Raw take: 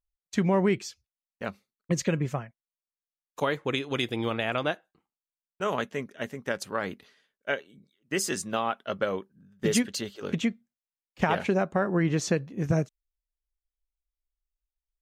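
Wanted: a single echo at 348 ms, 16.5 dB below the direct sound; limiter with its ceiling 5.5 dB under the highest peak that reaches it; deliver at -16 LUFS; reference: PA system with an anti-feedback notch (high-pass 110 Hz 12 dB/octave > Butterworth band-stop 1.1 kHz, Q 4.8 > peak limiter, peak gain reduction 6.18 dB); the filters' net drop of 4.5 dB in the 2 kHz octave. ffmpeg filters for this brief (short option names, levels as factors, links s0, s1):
-af "equalizer=f=2000:t=o:g=-6,alimiter=limit=0.126:level=0:latency=1,highpass=110,asuperstop=centerf=1100:order=8:qfactor=4.8,aecho=1:1:348:0.15,volume=7.5,alimiter=limit=0.668:level=0:latency=1"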